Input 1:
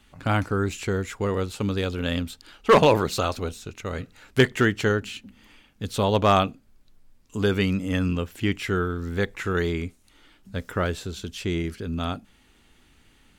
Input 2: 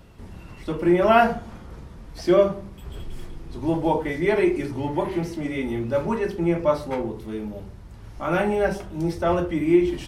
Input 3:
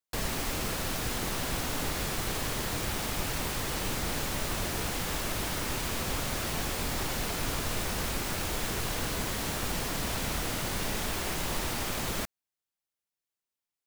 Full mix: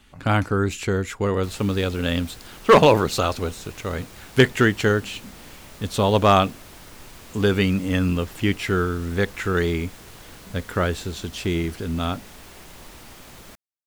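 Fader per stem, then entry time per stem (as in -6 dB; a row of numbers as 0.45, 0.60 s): +3.0 dB, off, -11.5 dB; 0.00 s, off, 1.30 s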